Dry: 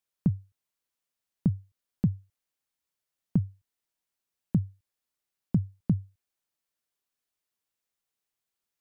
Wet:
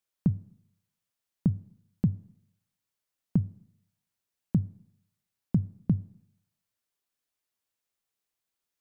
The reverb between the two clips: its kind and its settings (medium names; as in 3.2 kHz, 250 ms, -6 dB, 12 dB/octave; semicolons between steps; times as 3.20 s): Schroeder reverb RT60 0.74 s, combs from 27 ms, DRR 19.5 dB